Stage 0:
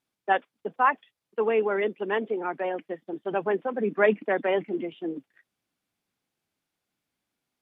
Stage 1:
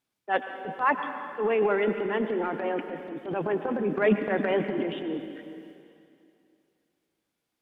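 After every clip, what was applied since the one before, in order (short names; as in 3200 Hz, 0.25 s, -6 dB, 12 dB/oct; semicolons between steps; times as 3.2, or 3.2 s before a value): transient shaper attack -8 dB, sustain +9 dB; reverb RT60 2.6 s, pre-delay 88 ms, DRR 7.5 dB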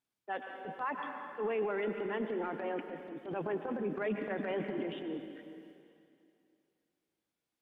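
limiter -19 dBFS, peak gain reduction 7.5 dB; gain -7.5 dB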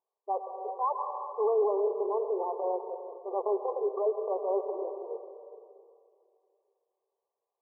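rattling part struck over -49 dBFS, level -39 dBFS; brick-wall FIR band-pass 370–1200 Hz; gain +8 dB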